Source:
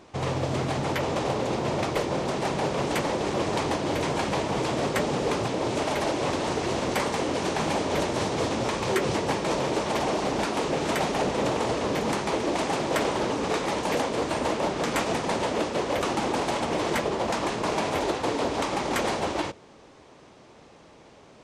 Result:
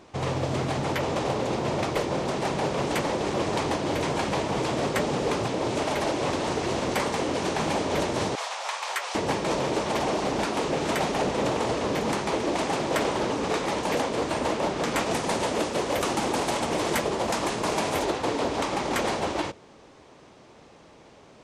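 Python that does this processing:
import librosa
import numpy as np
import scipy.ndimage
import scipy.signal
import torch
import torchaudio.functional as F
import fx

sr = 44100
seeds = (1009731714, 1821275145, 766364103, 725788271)

y = fx.cheby2_highpass(x, sr, hz=280.0, order=4, stop_db=50, at=(8.35, 9.15))
y = fx.high_shelf(y, sr, hz=8700.0, db=12.0, at=(15.11, 18.05))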